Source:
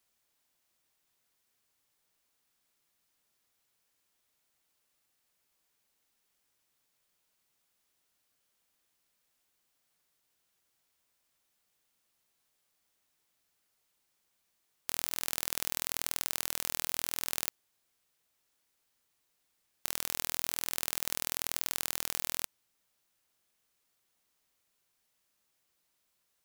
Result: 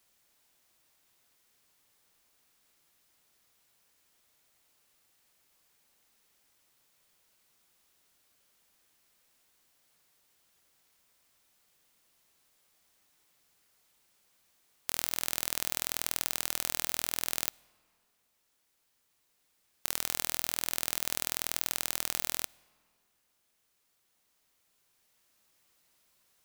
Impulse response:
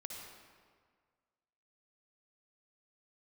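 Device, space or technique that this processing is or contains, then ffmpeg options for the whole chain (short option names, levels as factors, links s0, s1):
ducked reverb: -filter_complex "[0:a]asplit=3[s0][s1][s2];[1:a]atrim=start_sample=2205[s3];[s1][s3]afir=irnorm=-1:irlink=0[s4];[s2]apad=whole_len=1166085[s5];[s4][s5]sidechaincompress=threshold=0.00282:ratio=3:attack=6.8:release=1400,volume=1.78[s6];[s0][s6]amix=inputs=2:normalize=0,volume=1.12"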